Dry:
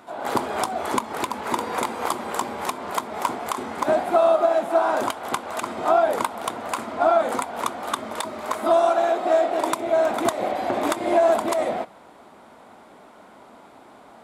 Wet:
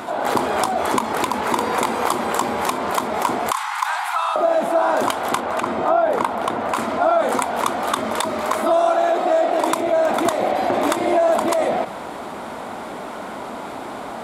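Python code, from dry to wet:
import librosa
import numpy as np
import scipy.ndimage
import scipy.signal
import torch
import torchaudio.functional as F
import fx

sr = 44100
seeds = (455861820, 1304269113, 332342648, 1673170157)

y = fx.steep_highpass(x, sr, hz=840.0, slope=72, at=(3.51, 4.36))
y = fx.high_shelf(y, sr, hz=3900.0, db=-11.5, at=(5.4, 6.75))
y = fx.env_flatten(y, sr, amount_pct=50)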